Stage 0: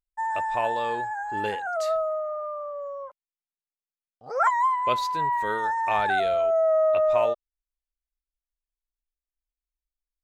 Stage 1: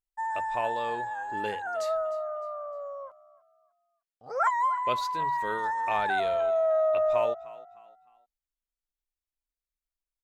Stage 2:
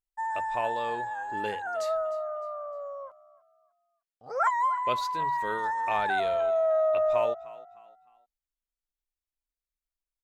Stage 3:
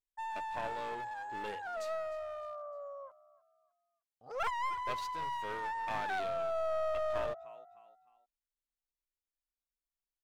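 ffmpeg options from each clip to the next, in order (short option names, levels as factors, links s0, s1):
-filter_complex "[0:a]bandreject=f=50:t=h:w=6,bandreject=f=100:t=h:w=6,bandreject=f=150:t=h:w=6,asplit=4[s0][s1][s2][s3];[s1]adelay=305,afreqshift=42,volume=0.112[s4];[s2]adelay=610,afreqshift=84,volume=0.0394[s5];[s3]adelay=915,afreqshift=126,volume=0.0138[s6];[s0][s4][s5][s6]amix=inputs=4:normalize=0,volume=0.668"
-af anull
-af "aeval=exprs='clip(val(0),-1,0.0251)':c=same,volume=0.447"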